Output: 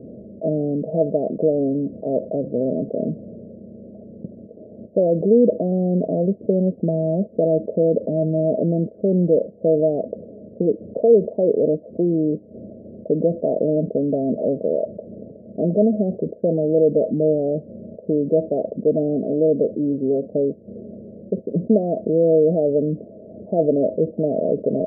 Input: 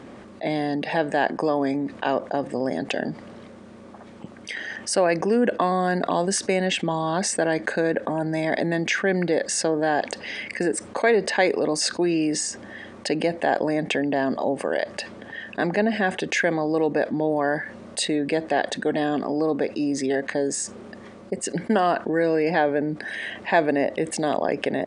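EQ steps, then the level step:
Chebyshev low-pass with heavy ripple 660 Hz, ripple 6 dB
+8.0 dB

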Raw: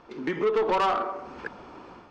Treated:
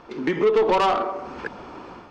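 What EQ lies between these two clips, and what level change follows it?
dynamic equaliser 1,400 Hz, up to −5 dB, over −39 dBFS, Q 1.6
+6.0 dB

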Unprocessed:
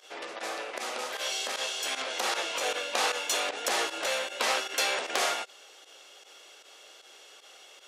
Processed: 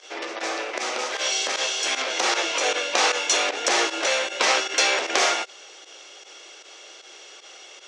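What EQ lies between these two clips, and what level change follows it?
loudspeaker in its box 230–7,700 Hz, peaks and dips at 340 Hz +6 dB, 2,200 Hz +3 dB, 5,800 Hz +5 dB
+6.5 dB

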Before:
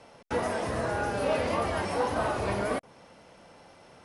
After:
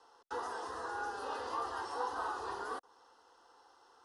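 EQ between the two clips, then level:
three-way crossover with the lows and the highs turned down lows −23 dB, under 460 Hz, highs −14 dB, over 7,300 Hz
low-shelf EQ 150 Hz +7 dB
phaser with its sweep stopped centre 610 Hz, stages 6
−4.0 dB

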